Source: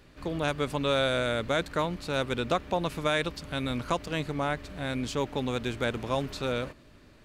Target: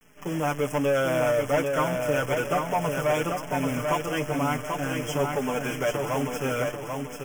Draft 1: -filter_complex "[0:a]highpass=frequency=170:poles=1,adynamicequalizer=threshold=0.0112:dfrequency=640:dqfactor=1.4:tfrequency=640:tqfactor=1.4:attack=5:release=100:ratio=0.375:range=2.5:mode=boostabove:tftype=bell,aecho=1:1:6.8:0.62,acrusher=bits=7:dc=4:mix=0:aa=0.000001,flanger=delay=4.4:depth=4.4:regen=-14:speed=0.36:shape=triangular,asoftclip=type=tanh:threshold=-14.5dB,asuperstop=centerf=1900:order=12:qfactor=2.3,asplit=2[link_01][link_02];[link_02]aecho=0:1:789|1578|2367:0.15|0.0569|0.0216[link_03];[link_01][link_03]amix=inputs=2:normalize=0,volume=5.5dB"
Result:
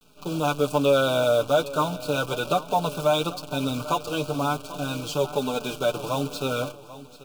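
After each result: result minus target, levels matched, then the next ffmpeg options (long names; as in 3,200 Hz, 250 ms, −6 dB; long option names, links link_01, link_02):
soft clipping: distortion −12 dB; echo-to-direct −12 dB; 4,000 Hz band +5.5 dB
-filter_complex "[0:a]highpass=frequency=170:poles=1,adynamicequalizer=threshold=0.0112:dfrequency=640:dqfactor=1.4:tfrequency=640:tqfactor=1.4:attack=5:release=100:ratio=0.375:range=2.5:mode=boostabove:tftype=bell,aecho=1:1:6.8:0.62,acrusher=bits=7:dc=4:mix=0:aa=0.000001,flanger=delay=4.4:depth=4.4:regen=-14:speed=0.36:shape=triangular,asoftclip=type=tanh:threshold=-24.5dB,asuperstop=centerf=1900:order=12:qfactor=2.3,asplit=2[link_01][link_02];[link_02]aecho=0:1:789|1578|2367:0.15|0.0569|0.0216[link_03];[link_01][link_03]amix=inputs=2:normalize=0,volume=5.5dB"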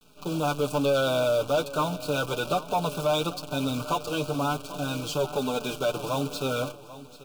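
echo-to-direct −12 dB; 4,000 Hz band +6.0 dB
-filter_complex "[0:a]highpass=frequency=170:poles=1,adynamicequalizer=threshold=0.0112:dfrequency=640:dqfactor=1.4:tfrequency=640:tqfactor=1.4:attack=5:release=100:ratio=0.375:range=2.5:mode=boostabove:tftype=bell,aecho=1:1:6.8:0.62,acrusher=bits=7:dc=4:mix=0:aa=0.000001,flanger=delay=4.4:depth=4.4:regen=-14:speed=0.36:shape=triangular,asoftclip=type=tanh:threshold=-24.5dB,asuperstop=centerf=1900:order=12:qfactor=2.3,asplit=2[link_01][link_02];[link_02]aecho=0:1:789|1578|2367|3156|3945:0.596|0.226|0.086|0.0327|0.0124[link_03];[link_01][link_03]amix=inputs=2:normalize=0,volume=5.5dB"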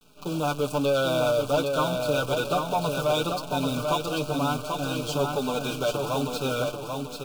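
4,000 Hz band +6.5 dB
-filter_complex "[0:a]highpass=frequency=170:poles=1,adynamicequalizer=threshold=0.0112:dfrequency=640:dqfactor=1.4:tfrequency=640:tqfactor=1.4:attack=5:release=100:ratio=0.375:range=2.5:mode=boostabove:tftype=bell,aecho=1:1:6.8:0.62,acrusher=bits=7:dc=4:mix=0:aa=0.000001,flanger=delay=4.4:depth=4.4:regen=-14:speed=0.36:shape=triangular,asoftclip=type=tanh:threshold=-24.5dB,asuperstop=centerf=4100:order=12:qfactor=2.3,asplit=2[link_01][link_02];[link_02]aecho=0:1:789|1578|2367|3156|3945:0.596|0.226|0.086|0.0327|0.0124[link_03];[link_01][link_03]amix=inputs=2:normalize=0,volume=5.5dB"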